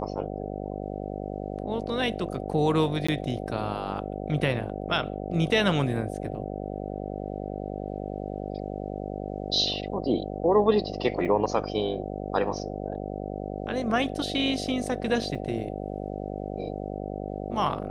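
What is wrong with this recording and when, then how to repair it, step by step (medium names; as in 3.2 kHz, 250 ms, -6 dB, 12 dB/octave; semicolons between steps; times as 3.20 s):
buzz 50 Hz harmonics 15 -34 dBFS
3.07–3.08 s: dropout 15 ms
11.25–11.26 s: dropout 6.3 ms
15.35 s: dropout 3.2 ms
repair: de-hum 50 Hz, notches 15; interpolate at 3.07 s, 15 ms; interpolate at 11.25 s, 6.3 ms; interpolate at 15.35 s, 3.2 ms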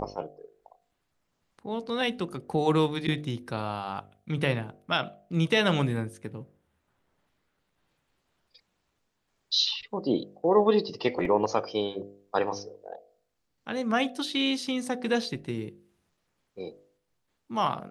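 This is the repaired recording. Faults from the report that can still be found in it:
nothing left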